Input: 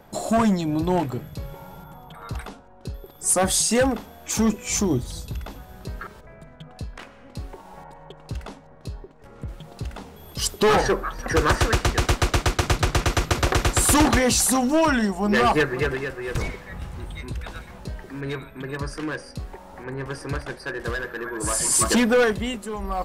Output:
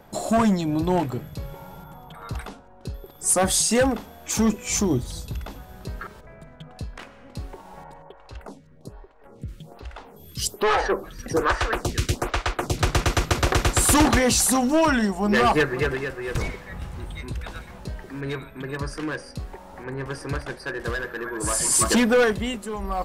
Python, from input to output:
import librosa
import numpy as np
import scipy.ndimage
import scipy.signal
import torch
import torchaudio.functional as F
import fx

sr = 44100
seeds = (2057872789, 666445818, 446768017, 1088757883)

y = fx.stagger_phaser(x, sr, hz=1.2, at=(8.02, 12.78))